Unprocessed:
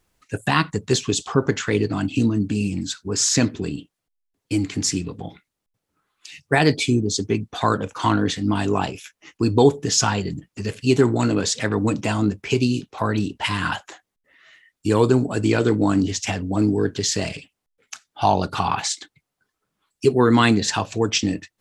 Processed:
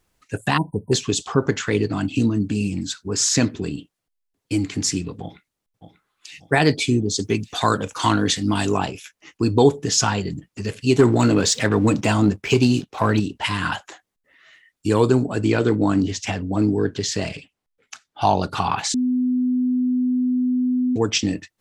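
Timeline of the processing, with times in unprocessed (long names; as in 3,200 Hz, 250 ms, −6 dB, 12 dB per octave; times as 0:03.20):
0:00.57–0:00.92: time-frequency box erased 1,000–8,400 Hz
0:05.22–0:06.39: delay throw 590 ms, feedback 45%, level −10.5 dB
0:07.19–0:08.77: high-shelf EQ 3,400 Hz +10.5 dB
0:10.99–0:13.20: leveller curve on the samples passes 1
0:15.23–0:18.21: high-shelf EQ 6,700 Hz −8 dB
0:18.94–0:20.96: beep over 251 Hz −17 dBFS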